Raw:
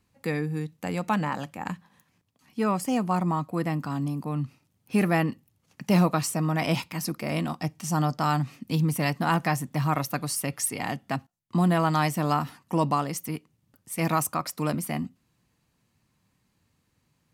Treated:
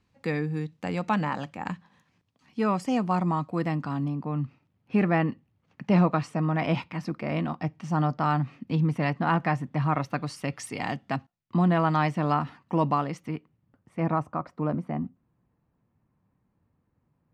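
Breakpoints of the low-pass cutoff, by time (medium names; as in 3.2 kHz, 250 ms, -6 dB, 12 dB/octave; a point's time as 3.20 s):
3.69 s 5.2 kHz
4.21 s 2.5 kHz
9.93 s 2.5 kHz
10.85 s 5.2 kHz
11.70 s 2.9 kHz
13.13 s 2.9 kHz
14.22 s 1.1 kHz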